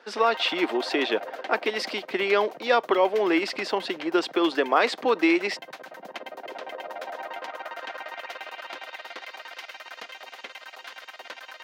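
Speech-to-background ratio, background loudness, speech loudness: 14.5 dB, −39.0 LKFS, −24.5 LKFS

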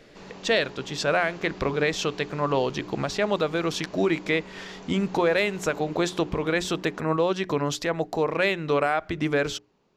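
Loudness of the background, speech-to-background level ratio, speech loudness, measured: −44.0 LKFS, 18.0 dB, −26.0 LKFS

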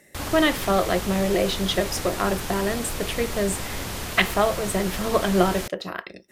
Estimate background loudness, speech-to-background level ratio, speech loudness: −31.0 LKFS, 6.5 dB, −24.5 LKFS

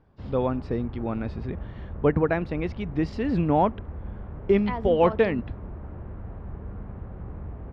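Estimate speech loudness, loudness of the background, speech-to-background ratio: −25.5 LKFS, −39.5 LKFS, 14.0 dB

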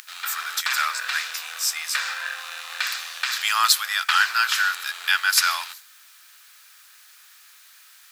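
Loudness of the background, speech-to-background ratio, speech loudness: −29.0 LKFS, 6.5 dB, −22.5 LKFS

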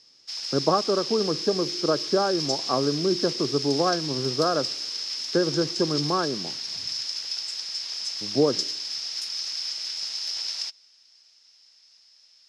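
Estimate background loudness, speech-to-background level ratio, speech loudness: −28.5 LKFS, 2.5 dB, −26.0 LKFS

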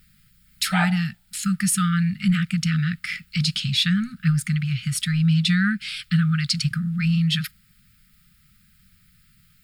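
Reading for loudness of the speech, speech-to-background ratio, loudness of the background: −22.5 LKFS, 7.0 dB, −29.5 LKFS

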